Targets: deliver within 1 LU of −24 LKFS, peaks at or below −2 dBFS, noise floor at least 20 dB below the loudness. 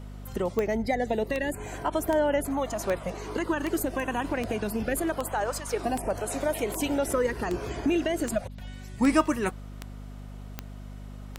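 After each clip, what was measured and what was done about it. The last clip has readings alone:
number of clicks 15; mains hum 50 Hz; hum harmonics up to 250 Hz; level of the hum −38 dBFS; integrated loudness −28.5 LKFS; sample peak −8.5 dBFS; target loudness −24.0 LKFS
→ click removal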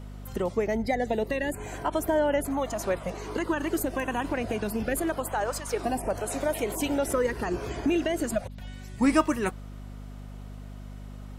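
number of clicks 0; mains hum 50 Hz; hum harmonics up to 250 Hz; level of the hum −38 dBFS
→ hum removal 50 Hz, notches 5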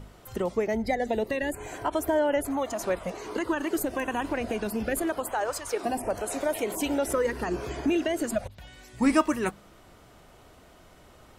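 mains hum none found; integrated loudness −28.5 LKFS; sample peak −9.0 dBFS; target loudness −24.0 LKFS
→ level +4.5 dB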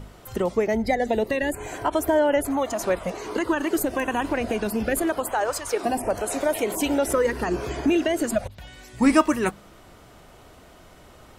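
integrated loudness −24.0 LKFS; sample peak −4.5 dBFS; background noise floor −50 dBFS

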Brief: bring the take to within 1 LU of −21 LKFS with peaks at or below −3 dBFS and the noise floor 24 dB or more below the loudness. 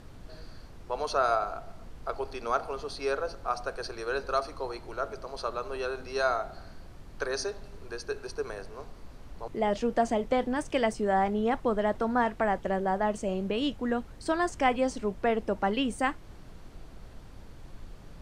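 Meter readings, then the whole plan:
background noise floor −48 dBFS; target noise floor −55 dBFS; integrated loudness −30.5 LKFS; sample peak −11.5 dBFS; target loudness −21.0 LKFS
→ noise reduction from a noise print 7 dB
level +9.5 dB
brickwall limiter −3 dBFS

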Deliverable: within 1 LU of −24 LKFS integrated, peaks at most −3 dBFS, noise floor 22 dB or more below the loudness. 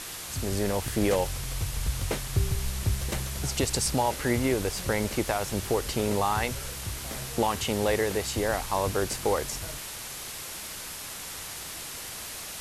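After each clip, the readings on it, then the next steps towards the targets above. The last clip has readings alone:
background noise floor −39 dBFS; target noise floor −52 dBFS; integrated loudness −29.5 LKFS; sample peak −13.0 dBFS; target loudness −24.0 LKFS
→ broadband denoise 13 dB, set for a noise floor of −39 dBFS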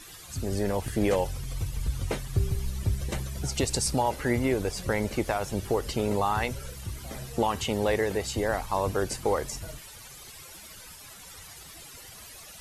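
background noise floor −47 dBFS; target noise floor −52 dBFS
→ broadband denoise 6 dB, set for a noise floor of −47 dBFS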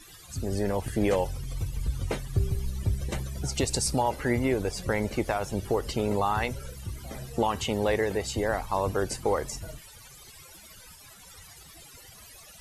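background noise floor −50 dBFS; target noise floor −52 dBFS
→ broadband denoise 6 dB, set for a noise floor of −50 dBFS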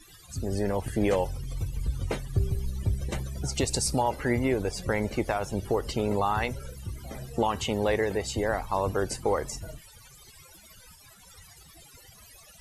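background noise floor −53 dBFS; integrated loudness −29.5 LKFS; sample peak −14.0 dBFS; target loudness −24.0 LKFS
→ level +5.5 dB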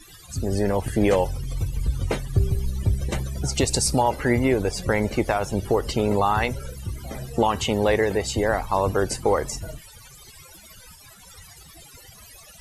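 integrated loudness −24.0 LKFS; sample peak −8.5 dBFS; background noise floor −48 dBFS

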